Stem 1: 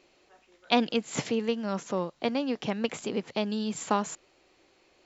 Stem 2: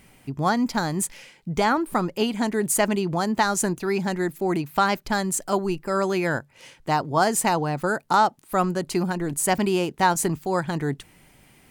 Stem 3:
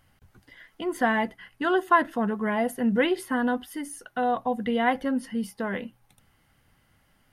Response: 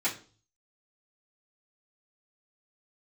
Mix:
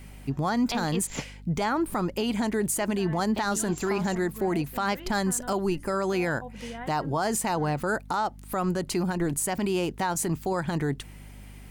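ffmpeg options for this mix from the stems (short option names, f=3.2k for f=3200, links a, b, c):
-filter_complex "[0:a]volume=-3dB,asplit=3[a][b][c];[a]atrim=end=1.24,asetpts=PTS-STARTPTS,afade=t=out:st=1.236:d=0.004:c=hsin[d];[b]atrim=start=1.24:end=3.34,asetpts=PTS-STARTPTS,volume=0[e];[c]atrim=start=3.34,asetpts=PTS-STARTPTS,afade=t=in:d=0.004:c=hsin[f];[d][e][f]concat=n=3:v=0:a=1[g];[1:a]aeval=exprs='val(0)+0.00501*(sin(2*PI*50*n/s)+sin(2*PI*2*50*n/s)/2+sin(2*PI*3*50*n/s)/3+sin(2*PI*4*50*n/s)/4+sin(2*PI*5*50*n/s)/5)':c=same,volume=2dB[h];[2:a]alimiter=limit=-16.5dB:level=0:latency=1:release=253,adelay=1950,volume=-13.5dB[i];[g][h][i]amix=inputs=3:normalize=0,alimiter=limit=-18dB:level=0:latency=1:release=101"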